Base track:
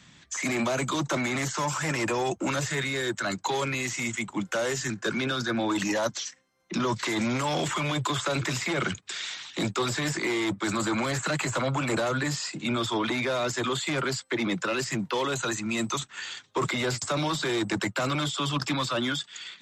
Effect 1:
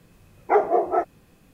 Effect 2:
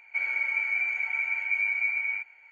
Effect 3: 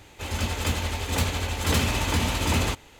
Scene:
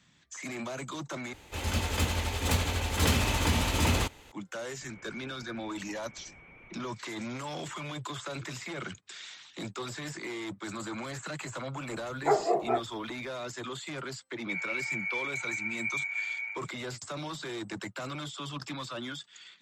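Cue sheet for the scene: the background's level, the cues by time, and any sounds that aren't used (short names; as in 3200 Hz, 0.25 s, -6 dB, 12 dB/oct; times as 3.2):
base track -10.5 dB
1.33 replace with 3 -2.5 dB
4.67 add 2 -15.5 dB + delta modulation 16 kbps, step -40.5 dBFS
11.76 add 1 -6.5 dB
14.34 add 2 -6.5 dB + speakerphone echo 90 ms, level -17 dB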